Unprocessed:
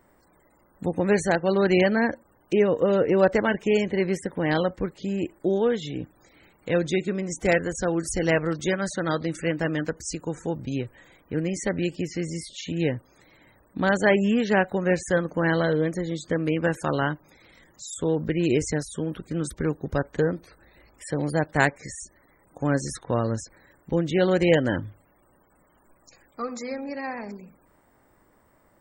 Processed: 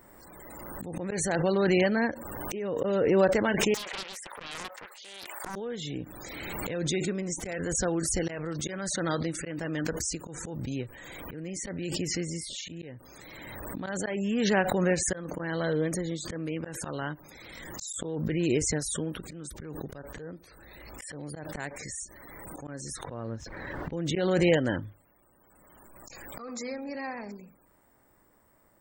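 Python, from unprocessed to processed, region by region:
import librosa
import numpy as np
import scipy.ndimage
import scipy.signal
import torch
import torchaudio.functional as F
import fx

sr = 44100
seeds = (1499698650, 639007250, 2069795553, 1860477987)

y = fx.chain(x, sr, fx.highpass(hz=740.0, slope=24),
    fx.doppler_dist(depth_ms=0.91), at=(3.74, 5.56))
y = fx.chain(y, sr, fx.law_mismatch(coded='A'),
    fx.air_absorb(metres=280.0), at=(23.11, 23.93))
y = fx.high_shelf(y, sr, hz=7200.0, db=8.5)
y = fx.auto_swell(y, sr, attack_ms=377.0)
y = fx.pre_swell(y, sr, db_per_s=22.0)
y = y * 10.0 ** (-4.5 / 20.0)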